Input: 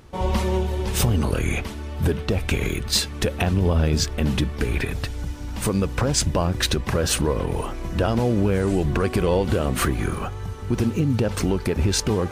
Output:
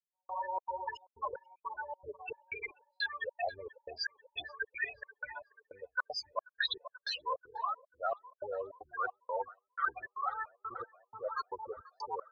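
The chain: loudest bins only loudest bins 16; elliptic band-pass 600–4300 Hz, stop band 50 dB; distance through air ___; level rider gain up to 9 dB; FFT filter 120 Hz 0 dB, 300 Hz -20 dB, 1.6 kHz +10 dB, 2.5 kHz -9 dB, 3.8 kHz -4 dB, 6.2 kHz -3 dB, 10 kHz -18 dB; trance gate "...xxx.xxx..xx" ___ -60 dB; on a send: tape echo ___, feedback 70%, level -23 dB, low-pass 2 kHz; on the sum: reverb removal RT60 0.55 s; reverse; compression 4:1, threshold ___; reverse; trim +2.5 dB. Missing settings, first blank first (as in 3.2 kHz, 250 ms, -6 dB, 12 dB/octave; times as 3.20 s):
71 m, 155 bpm, 486 ms, -37 dBFS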